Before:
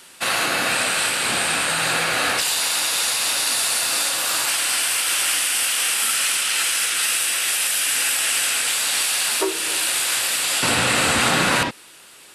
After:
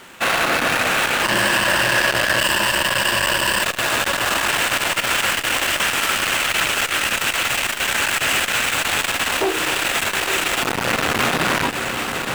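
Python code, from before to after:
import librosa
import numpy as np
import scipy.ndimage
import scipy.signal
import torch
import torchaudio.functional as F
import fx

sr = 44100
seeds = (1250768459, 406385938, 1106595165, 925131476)

y = scipy.ndimage.median_filter(x, 9, mode='constant')
y = fx.ripple_eq(y, sr, per_octave=1.3, db=16, at=(1.23, 3.63))
y = np.clip(y, -10.0 ** (-21.5 / 20.0), 10.0 ** (-21.5 / 20.0))
y = fx.echo_diffused(y, sr, ms=905, feedback_pct=73, wet_db=-9.0)
y = fx.transformer_sat(y, sr, knee_hz=1100.0)
y = F.gain(torch.from_numpy(y), 9.0).numpy()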